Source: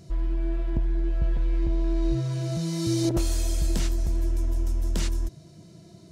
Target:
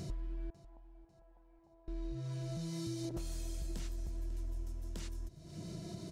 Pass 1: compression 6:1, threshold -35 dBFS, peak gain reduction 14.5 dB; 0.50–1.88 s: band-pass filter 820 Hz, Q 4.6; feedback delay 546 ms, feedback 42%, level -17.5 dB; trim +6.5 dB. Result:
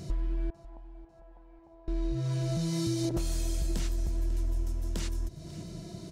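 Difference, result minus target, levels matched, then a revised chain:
compression: peak gain reduction -10 dB
compression 6:1, threshold -47 dBFS, peak gain reduction 24.5 dB; 0.50–1.88 s: band-pass filter 820 Hz, Q 4.6; feedback delay 546 ms, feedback 42%, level -17.5 dB; trim +6.5 dB

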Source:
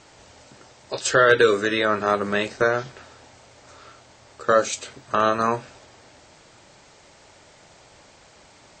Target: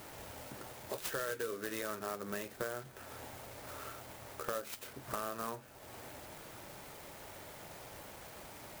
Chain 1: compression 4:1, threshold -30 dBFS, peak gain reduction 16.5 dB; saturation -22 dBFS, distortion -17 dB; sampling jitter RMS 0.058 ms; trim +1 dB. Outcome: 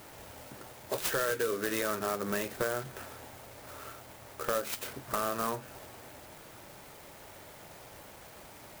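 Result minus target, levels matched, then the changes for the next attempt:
compression: peak gain reduction -8.5 dB
change: compression 4:1, threshold -41.5 dBFS, peak gain reduction 25 dB

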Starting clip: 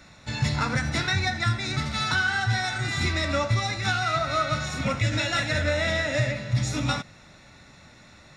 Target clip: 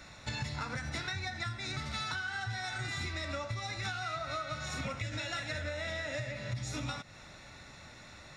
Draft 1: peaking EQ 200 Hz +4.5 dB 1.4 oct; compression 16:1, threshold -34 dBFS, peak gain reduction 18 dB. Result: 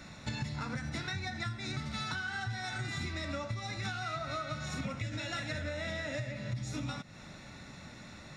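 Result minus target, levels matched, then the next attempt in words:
250 Hz band +4.5 dB
peaking EQ 200 Hz -4.5 dB 1.4 oct; compression 16:1, threshold -34 dBFS, peak gain reduction 14.5 dB

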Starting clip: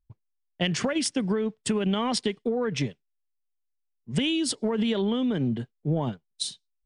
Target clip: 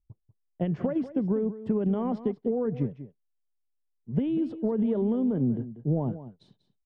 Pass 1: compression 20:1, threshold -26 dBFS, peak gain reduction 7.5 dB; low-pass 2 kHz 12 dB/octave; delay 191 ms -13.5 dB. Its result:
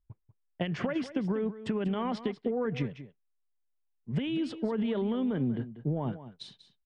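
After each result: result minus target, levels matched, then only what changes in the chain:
2 kHz band +15.0 dB; compression: peak gain reduction +7.5 dB
change: low-pass 650 Hz 12 dB/octave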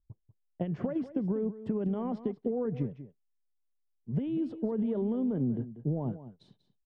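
compression: peak gain reduction +7.5 dB
remove: compression 20:1, threshold -26 dBFS, peak gain reduction 7.5 dB

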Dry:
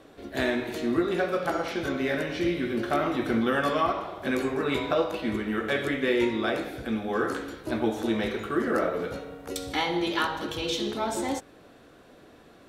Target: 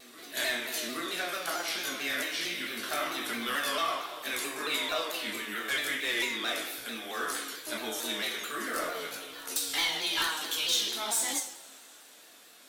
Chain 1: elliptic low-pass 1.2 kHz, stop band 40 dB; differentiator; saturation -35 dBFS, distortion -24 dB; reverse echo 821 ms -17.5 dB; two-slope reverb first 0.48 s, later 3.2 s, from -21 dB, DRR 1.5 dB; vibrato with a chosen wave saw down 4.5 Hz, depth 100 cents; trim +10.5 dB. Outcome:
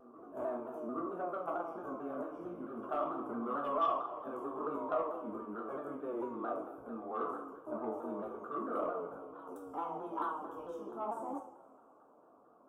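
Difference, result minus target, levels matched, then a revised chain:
1 kHz band +7.5 dB
differentiator; saturation -35 dBFS, distortion -13 dB; reverse echo 821 ms -17.5 dB; two-slope reverb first 0.48 s, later 3.2 s, from -21 dB, DRR 1.5 dB; vibrato with a chosen wave saw down 4.5 Hz, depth 100 cents; trim +10.5 dB

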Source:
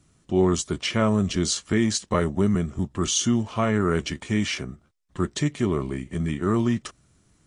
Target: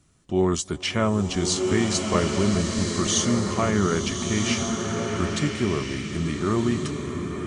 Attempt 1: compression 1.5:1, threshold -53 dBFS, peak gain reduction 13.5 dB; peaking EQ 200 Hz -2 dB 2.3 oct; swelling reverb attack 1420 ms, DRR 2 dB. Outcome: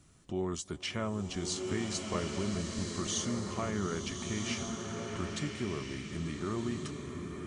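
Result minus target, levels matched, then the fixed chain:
compression: peak gain reduction +13.5 dB
peaking EQ 200 Hz -2 dB 2.3 oct; swelling reverb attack 1420 ms, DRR 2 dB

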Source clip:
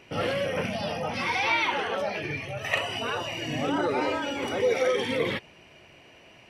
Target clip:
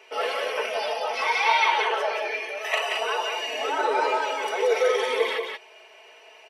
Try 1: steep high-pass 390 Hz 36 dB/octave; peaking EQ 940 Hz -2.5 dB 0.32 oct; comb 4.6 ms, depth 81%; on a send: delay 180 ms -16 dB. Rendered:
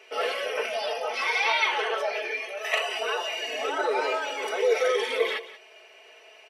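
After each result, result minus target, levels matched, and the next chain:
echo-to-direct -11 dB; 1 kHz band -3.0 dB
steep high-pass 390 Hz 36 dB/octave; peaking EQ 940 Hz -2.5 dB 0.32 oct; comb 4.6 ms, depth 81%; on a send: delay 180 ms -5 dB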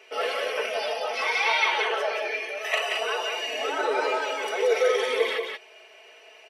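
1 kHz band -3.0 dB
steep high-pass 390 Hz 36 dB/octave; peaking EQ 940 Hz +5 dB 0.32 oct; comb 4.6 ms, depth 81%; on a send: delay 180 ms -5 dB

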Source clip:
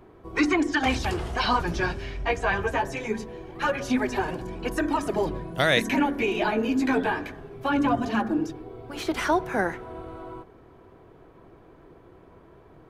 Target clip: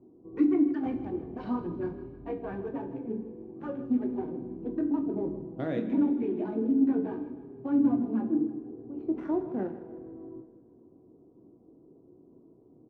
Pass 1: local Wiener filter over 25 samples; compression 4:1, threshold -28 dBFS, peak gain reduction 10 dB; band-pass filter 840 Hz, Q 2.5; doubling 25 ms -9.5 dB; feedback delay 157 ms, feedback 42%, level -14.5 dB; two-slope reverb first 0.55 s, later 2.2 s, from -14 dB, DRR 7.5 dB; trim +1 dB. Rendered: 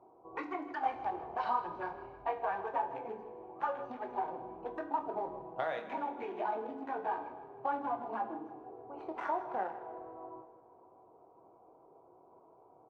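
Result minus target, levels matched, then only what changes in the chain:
1 kHz band +18.0 dB; compression: peak gain reduction +10 dB
change: band-pass filter 260 Hz, Q 2.5; remove: compression 4:1, threshold -28 dBFS, peak gain reduction 10 dB

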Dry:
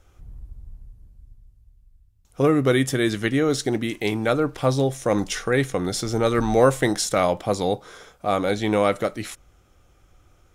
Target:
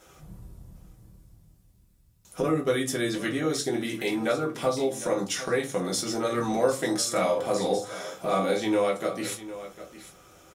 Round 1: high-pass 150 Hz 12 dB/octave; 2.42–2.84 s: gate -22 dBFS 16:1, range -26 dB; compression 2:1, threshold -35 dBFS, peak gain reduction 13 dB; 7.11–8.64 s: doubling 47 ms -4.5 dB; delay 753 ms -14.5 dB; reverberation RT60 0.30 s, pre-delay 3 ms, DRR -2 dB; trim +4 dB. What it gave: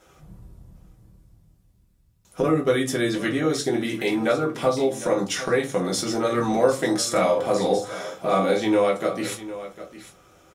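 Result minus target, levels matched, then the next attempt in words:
compression: peak gain reduction -4.5 dB; 8 kHz band -3.0 dB
high-pass 150 Hz 12 dB/octave; treble shelf 4.9 kHz +6 dB; 2.42–2.84 s: gate -22 dBFS 16:1, range -26 dB; compression 2:1, threshold -44 dBFS, peak gain reduction 17.5 dB; 7.11–8.64 s: doubling 47 ms -4.5 dB; delay 753 ms -14.5 dB; reverberation RT60 0.30 s, pre-delay 3 ms, DRR -2 dB; trim +4 dB

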